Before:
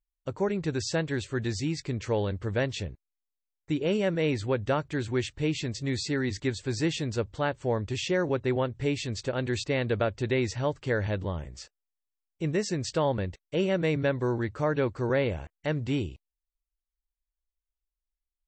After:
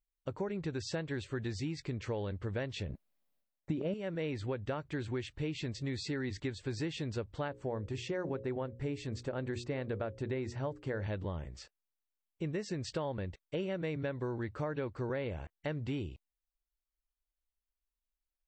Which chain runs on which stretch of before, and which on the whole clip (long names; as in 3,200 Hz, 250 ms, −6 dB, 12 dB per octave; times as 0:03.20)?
0:02.89–0:03.94: transient designer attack +2 dB, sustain +11 dB + hollow resonant body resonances 210/580 Hz, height 11 dB, ringing for 20 ms
0:07.48–0:11.03: parametric band 3,300 Hz −7 dB 1.7 octaves + mains-hum notches 60/120/180/240/300/360/420/480/540 Hz
whole clip: parametric band 6,900 Hz −7 dB 0.99 octaves; downward compressor, threshold −30 dBFS; level −3 dB